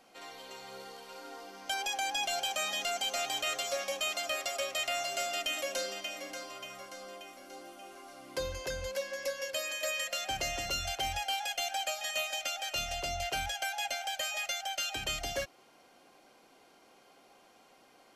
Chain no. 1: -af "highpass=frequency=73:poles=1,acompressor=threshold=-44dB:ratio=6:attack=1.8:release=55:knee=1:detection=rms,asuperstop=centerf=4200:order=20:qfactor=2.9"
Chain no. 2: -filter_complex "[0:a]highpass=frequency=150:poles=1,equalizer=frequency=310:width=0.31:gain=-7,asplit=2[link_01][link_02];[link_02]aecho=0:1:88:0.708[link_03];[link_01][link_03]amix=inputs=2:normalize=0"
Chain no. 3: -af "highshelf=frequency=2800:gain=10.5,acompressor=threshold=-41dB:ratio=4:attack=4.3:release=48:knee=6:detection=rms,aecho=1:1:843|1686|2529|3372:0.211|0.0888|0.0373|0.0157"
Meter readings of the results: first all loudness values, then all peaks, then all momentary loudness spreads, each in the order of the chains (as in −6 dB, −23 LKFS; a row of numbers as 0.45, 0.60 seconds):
−46.5, −33.5, −40.0 LKFS; −33.0, −22.0, −26.0 dBFS; 16, 16, 13 LU